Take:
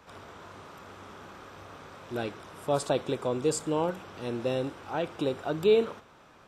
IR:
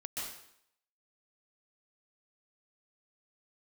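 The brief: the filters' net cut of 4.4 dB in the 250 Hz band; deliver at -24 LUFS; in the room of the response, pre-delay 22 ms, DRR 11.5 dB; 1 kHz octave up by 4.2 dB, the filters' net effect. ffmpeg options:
-filter_complex "[0:a]equalizer=f=250:t=o:g=-6.5,equalizer=f=1000:t=o:g=6,asplit=2[s0][s1];[1:a]atrim=start_sample=2205,adelay=22[s2];[s1][s2]afir=irnorm=-1:irlink=0,volume=0.237[s3];[s0][s3]amix=inputs=2:normalize=0,volume=2.11"

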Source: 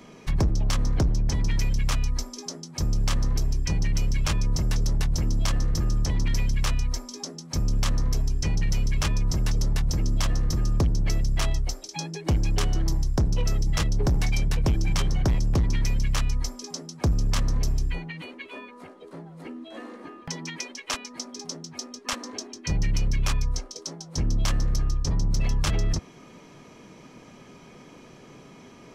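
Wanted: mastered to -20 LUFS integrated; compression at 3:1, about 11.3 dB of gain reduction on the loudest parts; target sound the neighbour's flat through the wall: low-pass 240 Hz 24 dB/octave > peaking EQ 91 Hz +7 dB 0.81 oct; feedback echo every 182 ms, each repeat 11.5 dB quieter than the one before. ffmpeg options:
-af "acompressor=threshold=0.0158:ratio=3,lowpass=f=240:w=0.5412,lowpass=f=240:w=1.3066,equalizer=f=91:t=o:w=0.81:g=7,aecho=1:1:182|364|546:0.266|0.0718|0.0194,volume=6.68"

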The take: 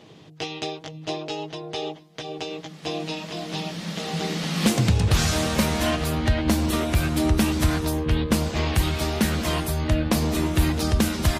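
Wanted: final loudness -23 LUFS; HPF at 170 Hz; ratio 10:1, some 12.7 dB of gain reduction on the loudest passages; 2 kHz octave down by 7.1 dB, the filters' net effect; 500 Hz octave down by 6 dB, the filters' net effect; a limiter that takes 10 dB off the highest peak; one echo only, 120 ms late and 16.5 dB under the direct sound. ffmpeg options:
-af "highpass=170,equalizer=f=500:t=o:g=-7.5,equalizer=f=2000:t=o:g=-9,acompressor=threshold=0.0251:ratio=10,alimiter=level_in=1.5:limit=0.0631:level=0:latency=1,volume=0.668,aecho=1:1:120:0.15,volume=5.31"

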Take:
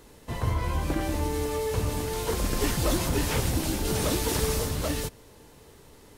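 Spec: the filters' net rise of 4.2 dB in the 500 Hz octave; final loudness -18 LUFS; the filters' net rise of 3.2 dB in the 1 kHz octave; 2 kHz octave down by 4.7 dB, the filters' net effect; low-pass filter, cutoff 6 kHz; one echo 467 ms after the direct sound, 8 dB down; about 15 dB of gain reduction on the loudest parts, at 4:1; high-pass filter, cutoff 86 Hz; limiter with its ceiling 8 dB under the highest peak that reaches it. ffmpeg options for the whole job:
-af "highpass=86,lowpass=6000,equalizer=f=500:t=o:g=4.5,equalizer=f=1000:t=o:g=4,equalizer=f=2000:t=o:g=-7.5,acompressor=threshold=0.01:ratio=4,alimiter=level_in=3.35:limit=0.0631:level=0:latency=1,volume=0.299,aecho=1:1:467:0.398,volume=18.8"

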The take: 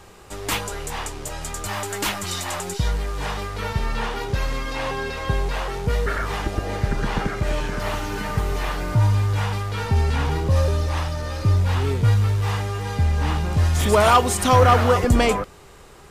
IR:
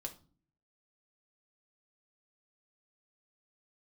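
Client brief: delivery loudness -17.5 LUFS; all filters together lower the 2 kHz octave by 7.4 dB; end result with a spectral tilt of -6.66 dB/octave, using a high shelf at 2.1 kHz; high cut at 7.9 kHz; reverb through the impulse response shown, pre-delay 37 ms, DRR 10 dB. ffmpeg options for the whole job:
-filter_complex "[0:a]lowpass=7900,equalizer=f=2000:t=o:g=-7.5,highshelf=f=2100:g=-4.5,asplit=2[s0][s1];[1:a]atrim=start_sample=2205,adelay=37[s2];[s1][s2]afir=irnorm=-1:irlink=0,volume=0.422[s3];[s0][s3]amix=inputs=2:normalize=0,volume=1.88"

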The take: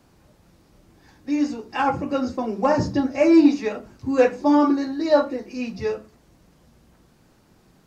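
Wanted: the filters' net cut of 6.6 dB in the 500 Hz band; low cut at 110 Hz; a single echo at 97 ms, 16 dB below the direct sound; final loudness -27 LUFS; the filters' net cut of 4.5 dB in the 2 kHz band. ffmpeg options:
-af "highpass=110,equalizer=f=500:t=o:g=-8,equalizer=f=2000:t=o:g=-5.5,aecho=1:1:97:0.158,volume=0.75"

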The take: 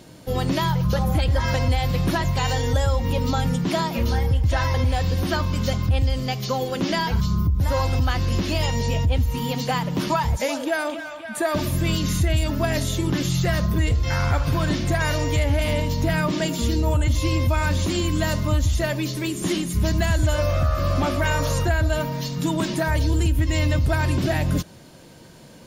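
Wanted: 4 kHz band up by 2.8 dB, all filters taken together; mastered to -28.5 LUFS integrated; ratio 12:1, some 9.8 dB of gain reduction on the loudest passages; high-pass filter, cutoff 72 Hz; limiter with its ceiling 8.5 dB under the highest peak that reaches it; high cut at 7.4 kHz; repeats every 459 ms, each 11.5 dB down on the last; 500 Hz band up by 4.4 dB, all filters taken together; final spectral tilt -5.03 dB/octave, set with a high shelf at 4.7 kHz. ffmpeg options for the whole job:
-af "highpass=72,lowpass=7400,equalizer=f=500:t=o:g=5.5,equalizer=f=4000:t=o:g=6.5,highshelf=f=4700:g=-5.5,acompressor=threshold=0.0501:ratio=12,alimiter=level_in=1.12:limit=0.0631:level=0:latency=1,volume=0.891,aecho=1:1:459|918|1377:0.266|0.0718|0.0194,volume=1.78"

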